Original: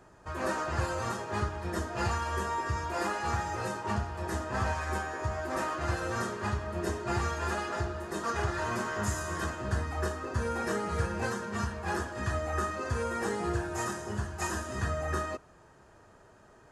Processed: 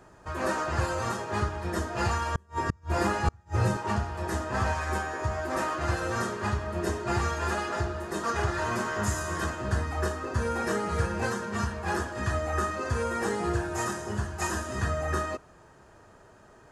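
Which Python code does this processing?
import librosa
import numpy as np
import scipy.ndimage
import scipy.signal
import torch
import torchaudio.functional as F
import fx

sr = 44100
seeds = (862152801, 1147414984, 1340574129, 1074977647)

y = fx.peak_eq(x, sr, hz=91.0, db=14.5, octaves=2.4, at=(2.35, 3.77))
y = fx.gate_flip(y, sr, shuts_db=-17.0, range_db=-36)
y = y * 10.0 ** (3.0 / 20.0)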